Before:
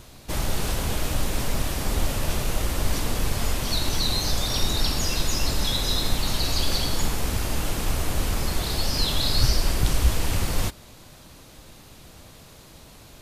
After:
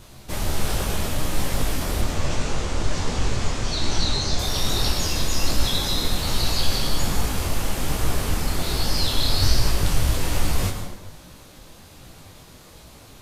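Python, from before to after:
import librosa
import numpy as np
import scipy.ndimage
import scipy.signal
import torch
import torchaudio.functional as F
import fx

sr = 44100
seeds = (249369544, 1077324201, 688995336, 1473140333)

y = fx.cheby1_lowpass(x, sr, hz=7200.0, order=3, at=(2.01, 4.39))
y = fx.rev_plate(y, sr, seeds[0], rt60_s=1.1, hf_ratio=0.6, predelay_ms=90, drr_db=4.5)
y = fx.detune_double(y, sr, cents=43)
y = F.gain(torch.from_numpy(y), 4.0).numpy()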